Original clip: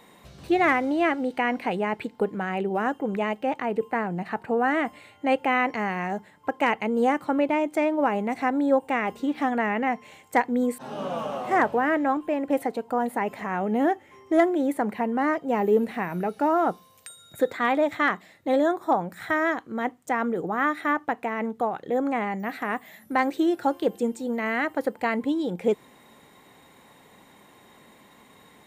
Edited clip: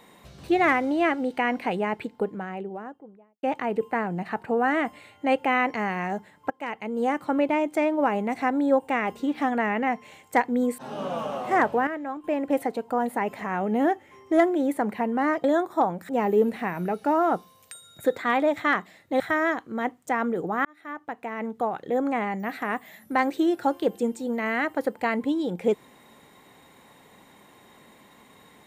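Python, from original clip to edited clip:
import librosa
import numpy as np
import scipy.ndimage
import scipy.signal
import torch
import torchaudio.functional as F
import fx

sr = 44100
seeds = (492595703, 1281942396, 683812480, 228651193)

y = fx.studio_fade_out(x, sr, start_s=1.74, length_s=1.69)
y = fx.edit(y, sr, fx.fade_in_from(start_s=6.5, length_s=0.86, floor_db=-16.5),
    fx.clip_gain(start_s=11.87, length_s=0.37, db=-9.0),
    fx.move(start_s=18.55, length_s=0.65, to_s=15.44),
    fx.fade_in_span(start_s=20.65, length_s=1.08), tone=tone)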